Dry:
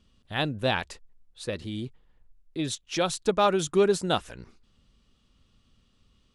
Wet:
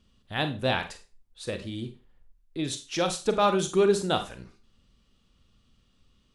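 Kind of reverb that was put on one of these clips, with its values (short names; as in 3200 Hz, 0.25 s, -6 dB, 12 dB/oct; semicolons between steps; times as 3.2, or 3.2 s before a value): Schroeder reverb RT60 0.31 s, combs from 32 ms, DRR 7.5 dB; gain -1 dB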